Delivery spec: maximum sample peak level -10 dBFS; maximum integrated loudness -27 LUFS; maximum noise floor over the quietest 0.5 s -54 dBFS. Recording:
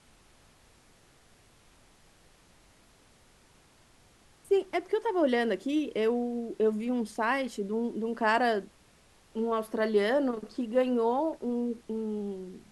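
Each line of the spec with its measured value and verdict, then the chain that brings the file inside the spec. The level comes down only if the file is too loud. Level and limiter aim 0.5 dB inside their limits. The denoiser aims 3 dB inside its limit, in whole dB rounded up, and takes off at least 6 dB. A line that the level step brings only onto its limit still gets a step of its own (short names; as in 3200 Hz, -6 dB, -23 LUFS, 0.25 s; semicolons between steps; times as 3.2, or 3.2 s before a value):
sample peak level -12.5 dBFS: OK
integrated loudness -29.5 LUFS: OK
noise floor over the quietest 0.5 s -61 dBFS: OK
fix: none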